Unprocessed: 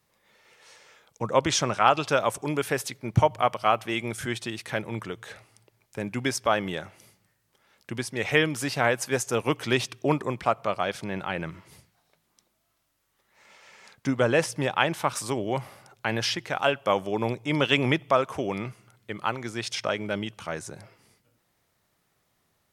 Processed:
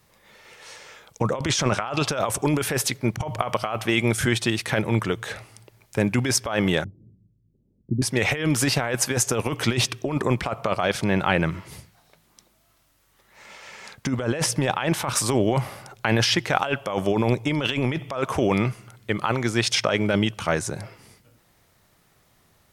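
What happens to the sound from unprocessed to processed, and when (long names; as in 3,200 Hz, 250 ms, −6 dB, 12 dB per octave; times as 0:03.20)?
0:06.84–0:08.02: inverse Chebyshev low-pass filter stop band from 1,800 Hz, stop band 80 dB
whole clip: compressor whose output falls as the input rises −29 dBFS, ratio −1; low-shelf EQ 93 Hz +7 dB; level +6 dB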